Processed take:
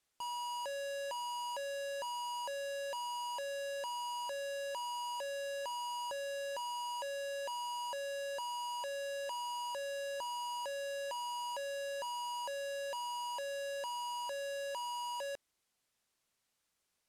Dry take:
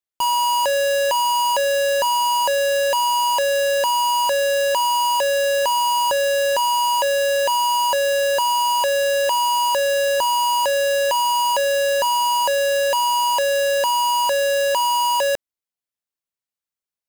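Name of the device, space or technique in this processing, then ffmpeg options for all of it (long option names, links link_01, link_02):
overflowing digital effects unit: -af "aeval=exprs='(mod(16.8*val(0)+1,2)-1)/16.8':channel_layout=same,lowpass=11000,volume=11dB"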